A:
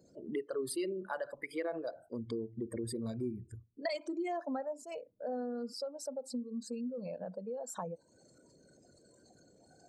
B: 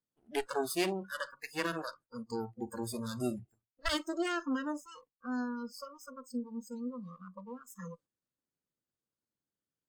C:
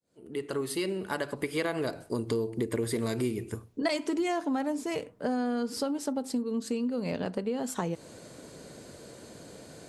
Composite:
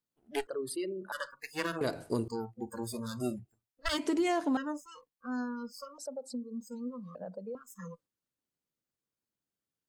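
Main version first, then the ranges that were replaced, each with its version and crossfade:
B
0:00.47–0:01.12: punch in from A
0:01.81–0:02.28: punch in from C
0:03.98–0:04.57: punch in from C
0:05.98–0:06.61: punch in from A
0:07.15–0:07.55: punch in from A

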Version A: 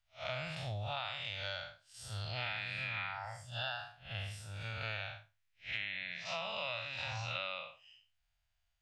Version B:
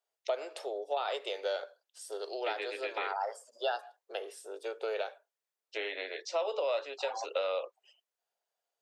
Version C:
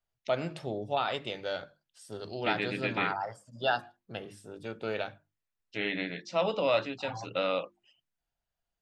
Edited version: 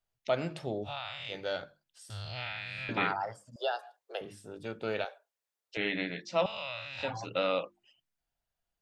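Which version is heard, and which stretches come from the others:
C
0:00.86–0:01.31: punch in from A, crossfade 0.06 s
0:02.10–0:02.89: punch in from A
0:03.56–0:04.21: punch in from B
0:05.05–0:05.77: punch in from B
0:06.46–0:07.03: punch in from A

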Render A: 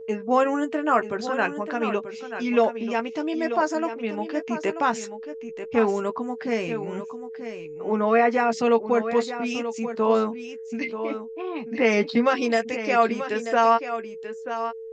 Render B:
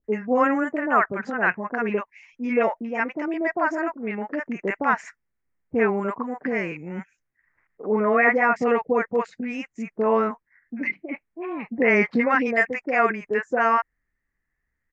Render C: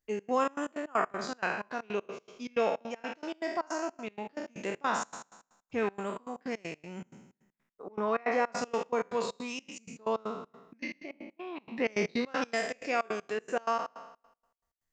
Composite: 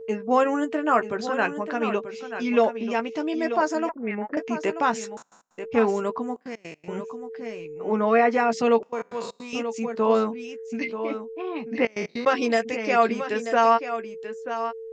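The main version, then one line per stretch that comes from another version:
A
0:03.89–0:04.37: punch in from B
0:05.17–0:05.58: punch in from C
0:06.36–0:06.88: punch in from C
0:08.83–0:09.53: punch in from C
0:11.85–0:12.26: punch in from C

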